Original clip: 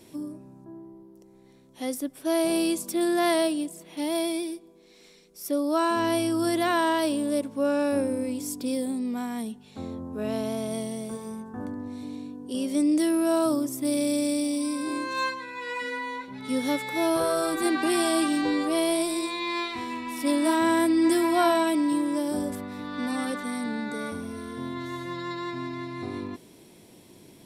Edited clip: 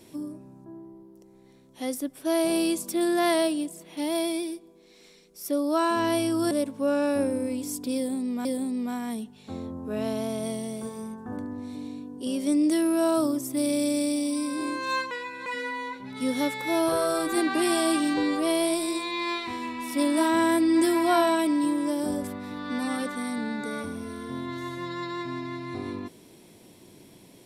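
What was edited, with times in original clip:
6.51–7.28 cut
8.73–9.22 loop, 2 plays
15.39–15.74 reverse

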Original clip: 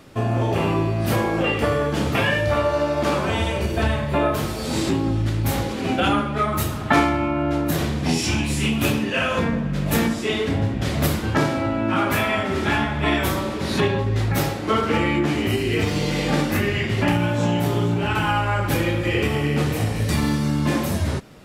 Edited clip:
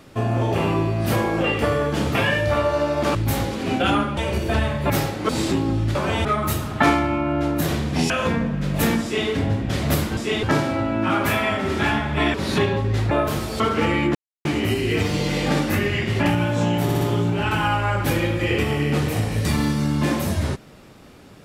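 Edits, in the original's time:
3.15–3.45 swap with 5.33–6.35
4.18–4.67 swap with 14.33–14.72
8.2–9.22 cut
10.15–10.41 copy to 11.29
13.2–13.56 cut
15.27 insert silence 0.30 s
17.65 stutter 0.06 s, 4 plays

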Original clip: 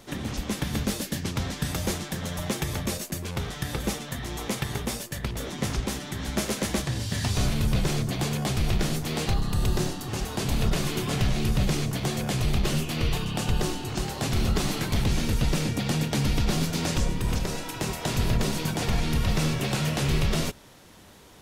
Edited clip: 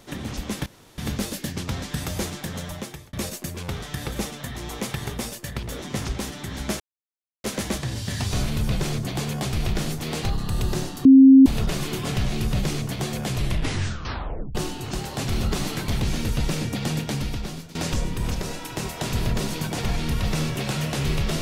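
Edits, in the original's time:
0.66 insert room tone 0.32 s
2.26–2.81 fade out
6.48 insert silence 0.64 s
10.09–10.5 bleep 267 Hz -6.5 dBFS
12.4 tape stop 1.19 s
16.01–16.79 fade out, to -18.5 dB

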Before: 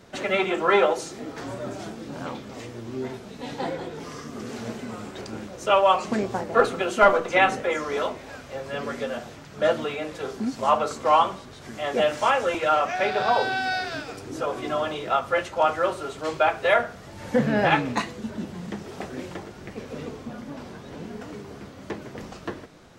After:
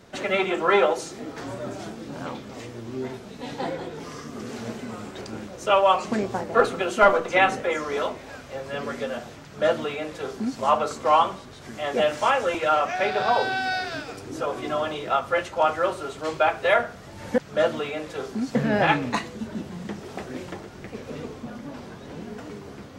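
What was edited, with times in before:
9.43–10.6 copy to 17.38

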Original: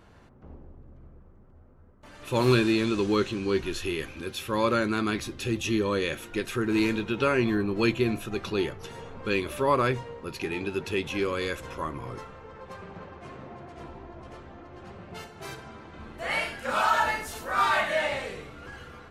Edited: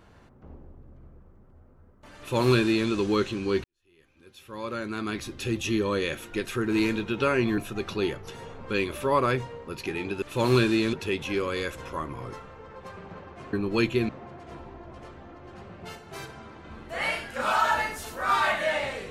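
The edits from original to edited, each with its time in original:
2.18–2.89 copy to 10.78
3.64–5.42 fade in quadratic
7.58–8.14 move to 13.38

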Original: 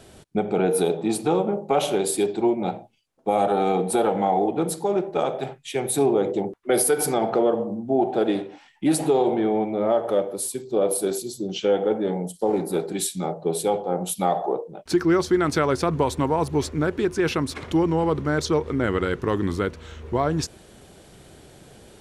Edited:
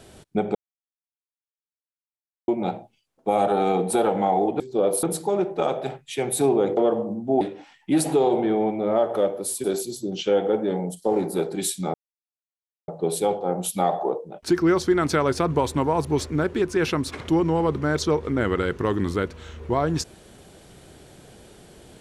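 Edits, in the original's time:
0.55–2.48 mute
6.34–7.38 cut
8.02–8.35 cut
10.58–11.01 move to 4.6
13.31 insert silence 0.94 s

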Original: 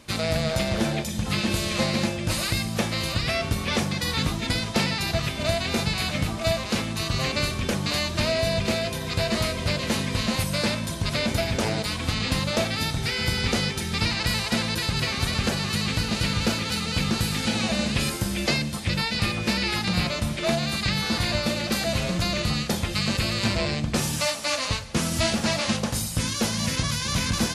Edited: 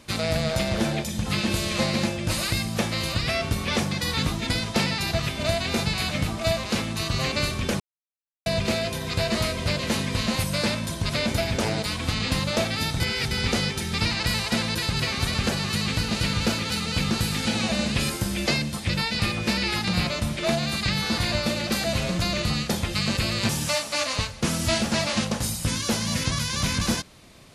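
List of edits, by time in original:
7.8–8.46 mute
13–13.31 reverse
23.49–24.01 cut

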